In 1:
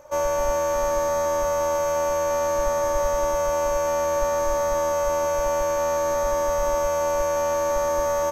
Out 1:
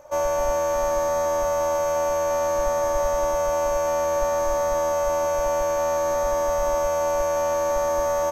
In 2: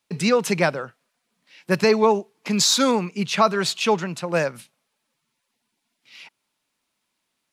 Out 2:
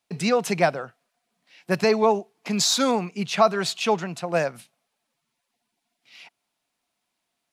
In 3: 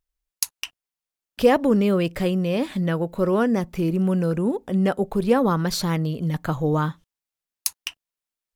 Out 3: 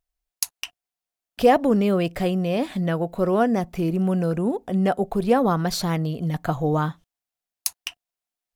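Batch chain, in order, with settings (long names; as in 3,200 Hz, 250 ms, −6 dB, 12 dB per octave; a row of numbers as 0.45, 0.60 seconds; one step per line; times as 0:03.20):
parametric band 710 Hz +11 dB 0.2 octaves
loudness normalisation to −23 LKFS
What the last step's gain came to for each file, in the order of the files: −1.0, −3.0, −1.0 decibels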